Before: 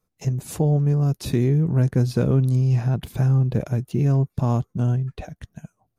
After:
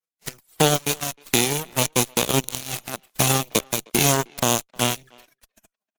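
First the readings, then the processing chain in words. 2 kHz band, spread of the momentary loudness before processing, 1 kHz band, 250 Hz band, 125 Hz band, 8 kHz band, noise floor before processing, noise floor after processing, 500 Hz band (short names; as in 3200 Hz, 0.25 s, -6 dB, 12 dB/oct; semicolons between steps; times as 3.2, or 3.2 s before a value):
+14.5 dB, 8 LU, +10.0 dB, -4.0 dB, -11.0 dB, n/a, -76 dBFS, under -85 dBFS, +2.5 dB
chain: spectral whitening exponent 0.3; reverb removal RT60 2 s; HPF 200 Hz 12 dB/oct; AGC gain up to 6 dB; envelope flanger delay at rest 6.2 ms, full sweep at -19.5 dBFS; added harmonics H 7 -16 dB, 8 -30 dB, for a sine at -5.5 dBFS; speakerphone echo 0.31 s, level -26 dB; gain +3.5 dB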